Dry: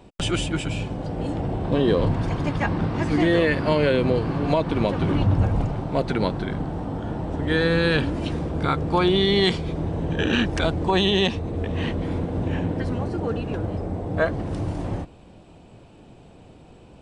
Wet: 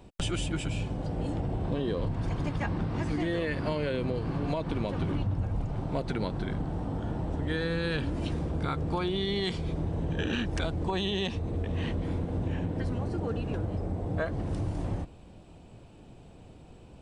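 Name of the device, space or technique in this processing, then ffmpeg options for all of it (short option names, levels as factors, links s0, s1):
ASMR close-microphone chain: -af "lowshelf=f=120:g=6.5,acompressor=threshold=0.0891:ratio=6,highshelf=f=6500:g=5,volume=0.531"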